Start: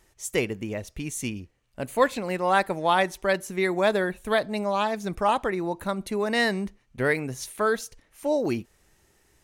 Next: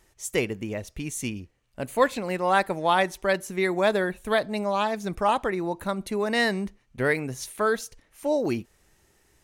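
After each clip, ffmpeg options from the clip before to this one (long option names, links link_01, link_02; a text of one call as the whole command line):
ffmpeg -i in.wav -af anull out.wav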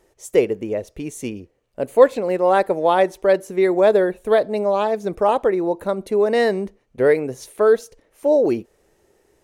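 ffmpeg -i in.wav -af "equalizer=frequency=470:width_type=o:width=1.5:gain=15,volume=-3dB" out.wav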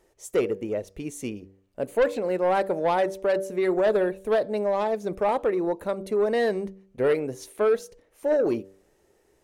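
ffmpeg -i in.wav -af "bandreject=frequency=96.3:width_type=h:width=4,bandreject=frequency=192.6:width_type=h:width=4,bandreject=frequency=288.9:width_type=h:width=4,bandreject=frequency=385.2:width_type=h:width=4,bandreject=frequency=481.5:width_type=h:width=4,bandreject=frequency=577.8:width_type=h:width=4,asoftclip=type=tanh:threshold=-11.5dB,volume=-4dB" out.wav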